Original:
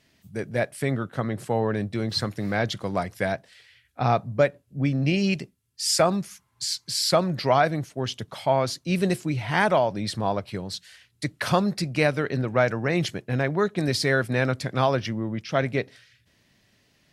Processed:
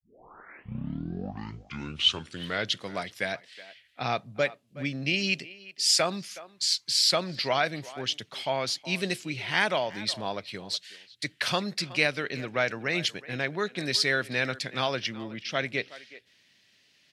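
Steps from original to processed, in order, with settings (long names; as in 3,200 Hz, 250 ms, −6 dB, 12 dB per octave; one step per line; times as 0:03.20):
turntable start at the beginning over 2.83 s
meter weighting curve D
far-end echo of a speakerphone 370 ms, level −17 dB
level −7 dB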